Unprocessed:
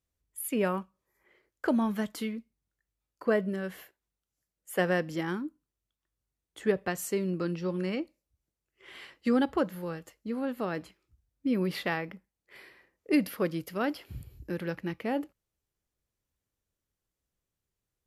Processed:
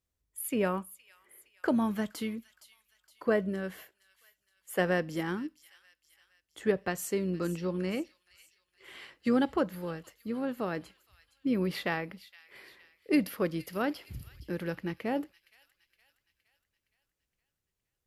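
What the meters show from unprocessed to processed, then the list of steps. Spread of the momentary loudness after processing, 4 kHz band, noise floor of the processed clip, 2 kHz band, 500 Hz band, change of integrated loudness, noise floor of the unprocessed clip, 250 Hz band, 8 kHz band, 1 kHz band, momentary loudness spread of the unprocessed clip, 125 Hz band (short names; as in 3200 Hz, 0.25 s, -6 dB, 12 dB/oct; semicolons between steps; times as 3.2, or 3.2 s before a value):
18 LU, -0.5 dB, -85 dBFS, -1.0 dB, -1.0 dB, -1.0 dB, under -85 dBFS, -1.0 dB, -0.5 dB, -1.0 dB, 14 LU, -1.0 dB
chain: AM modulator 110 Hz, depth 10%; on a send: thin delay 0.466 s, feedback 51%, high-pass 3100 Hz, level -12.5 dB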